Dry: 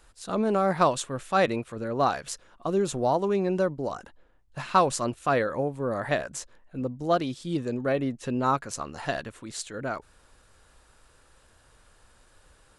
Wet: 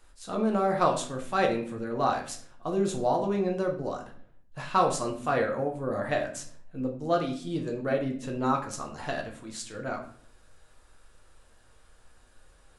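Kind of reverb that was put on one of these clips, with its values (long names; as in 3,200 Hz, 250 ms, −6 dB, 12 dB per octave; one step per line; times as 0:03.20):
rectangular room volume 62 cubic metres, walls mixed, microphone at 0.57 metres
level −4.5 dB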